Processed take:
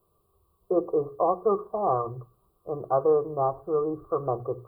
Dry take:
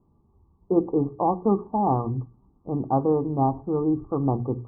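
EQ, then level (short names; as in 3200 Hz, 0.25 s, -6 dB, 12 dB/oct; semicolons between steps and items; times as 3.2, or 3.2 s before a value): tone controls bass -8 dB, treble +14 dB; low shelf 420 Hz -9 dB; fixed phaser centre 1300 Hz, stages 8; +8.0 dB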